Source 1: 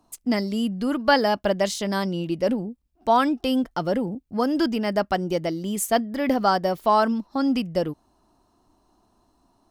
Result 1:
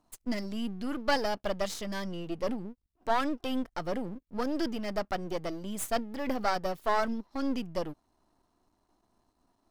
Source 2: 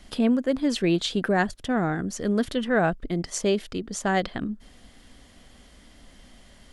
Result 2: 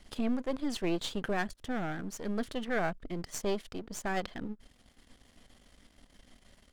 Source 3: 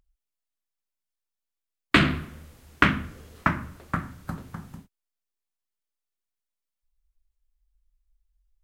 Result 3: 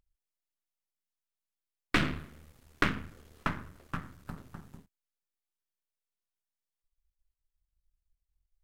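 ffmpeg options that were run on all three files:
-af "aeval=exprs='if(lt(val(0),0),0.251*val(0),val(0))':c=same,volume=0.531"

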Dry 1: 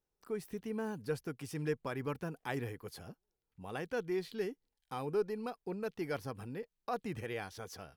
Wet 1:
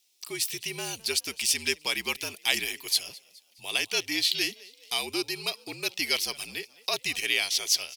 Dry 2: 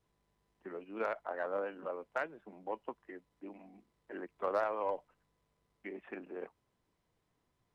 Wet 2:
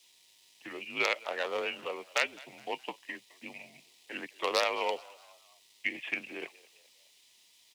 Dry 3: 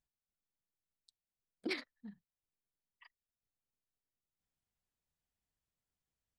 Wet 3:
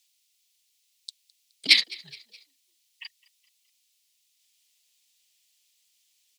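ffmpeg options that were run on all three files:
-filter_complex "[0:a]afreqshift=-61,lowpass=f=3200:p=1,aexciter=amount=9:drive=9.2:freq=2300,highpass=f=680:p=1,asplit=2[s0][s1];[s1]asplit=3[s2][s3][s4];[s2]adelay=210,afreqshift=64,volume=0.075[s5];[s3]adelay=420,afreqshift=128,volume=0.0376[s6];[s4]adelay=630,afreqshift=192,volume=0.0188[s7];[s5][s6][s7]amix=inputs=3:normalize=0[s8];[s0][s8]amix=inputs=2:normalize=0,volume=2.11"

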